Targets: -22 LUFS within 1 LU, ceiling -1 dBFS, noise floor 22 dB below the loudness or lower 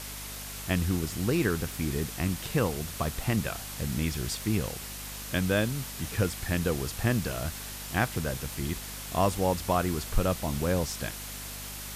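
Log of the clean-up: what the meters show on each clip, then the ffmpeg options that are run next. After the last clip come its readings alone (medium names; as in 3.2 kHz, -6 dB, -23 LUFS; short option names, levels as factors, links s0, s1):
hum 50 Hz; highest harmonic 250 Hz; hum level -44 dBFS; noise floor -40 dBFS; noise floor target -53 dBFS; loudness -30.5 LUFS; peak level -11.0 dBFS; loudness target -22.0 LUFS
-> -af "bandreject=f=50:t=h:w=4,bandreject=f=100:t=h:w=4,bandreject=f=150:t=h:w=4,bandreject=f=200:t=h:w=4,bandreject=f=250:t=h:w=4"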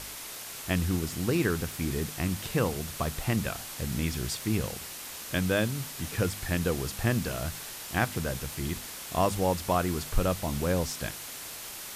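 hum not found; noise floor -41 dBFS; noise floor target -53 dBFS
-> -af "afftdn=nr=12:nf=-41"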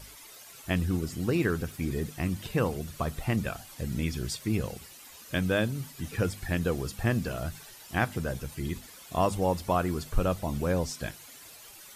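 noise floor -50 dBFS; noise floor target -53 dBFS
-> -af "afftdn=nr=6:nf=-50"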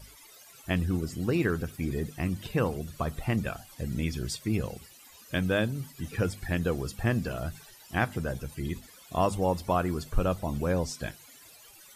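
noise floor -53 dBFS; loudness -31.0 LUFS; peak level -11.5 dBFS; loudness target -22.0 LUFS
-> -af "volume=2.82"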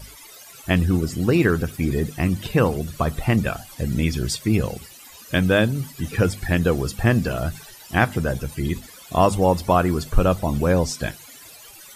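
loudness -22.0 LUFS; peak level -2.5 dBFS; noise floor -44 dBFS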